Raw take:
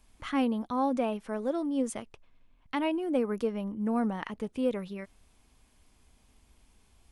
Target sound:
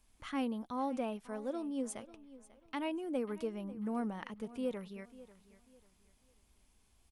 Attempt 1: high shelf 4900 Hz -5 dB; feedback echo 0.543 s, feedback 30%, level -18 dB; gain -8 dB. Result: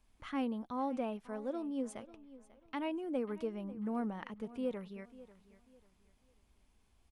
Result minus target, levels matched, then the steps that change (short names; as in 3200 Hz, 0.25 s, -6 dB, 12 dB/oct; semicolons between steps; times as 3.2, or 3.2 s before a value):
8000 Hz band -7.5 dB
change: high shelf 4900 Hz +5 dB